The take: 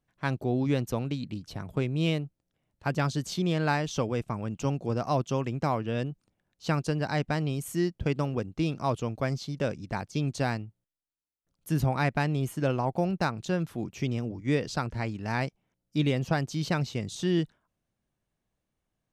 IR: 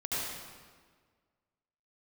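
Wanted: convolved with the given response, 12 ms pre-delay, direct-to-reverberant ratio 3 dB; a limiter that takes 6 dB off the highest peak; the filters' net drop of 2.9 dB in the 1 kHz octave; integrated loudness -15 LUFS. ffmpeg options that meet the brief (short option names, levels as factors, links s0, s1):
-filter_complex "[0:a]equalizer=f=1000:t=o:g=-4,alimiter=limit=0.106:level=0:latency=1,asplit=2[s0][s1];[1:a]atrim=start_sample=2205,adelay=12[s2];[s1][s2]afir=irnorm=-1:irlink=0,volume=0.355[s3];[s0][s3]amix=inputs=2:normalize=0,volume=5.62"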